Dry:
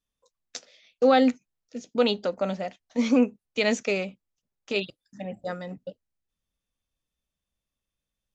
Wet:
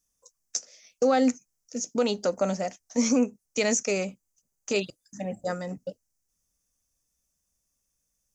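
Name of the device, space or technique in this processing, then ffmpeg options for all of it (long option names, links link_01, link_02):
over-bright horn tweeter: -filter_complex "[0:a]asettb=1/sr,asplit=3[link_01][link_02][link_03];[link_01]atrim=end=3.904[link_04];[link_02]atrim=start=3.9:end=5.69,asetpts=PTS-STARTPTS,afade=type=in:duration=0.004:curve=qsin,afade=type=out:start_time=1.786:duration=0.004:curve=qsin,bandreject=frequency=5500:width=11[link_05];[link_03]atrim=start=5.686[link_06];[link_04][link_05]acrossfade=duration=0.004:curve1=hsin:curve2=qsin[link_07];[link_07][link_06]acrossfade=duration=0.004:curve1=qsin:curve2=hsin,highshelf=frequency=4700:width_type=q:width=3:gain=9,alimiter=limit=-16dB:level=0:latency=1:release=324,volume=2.5dB"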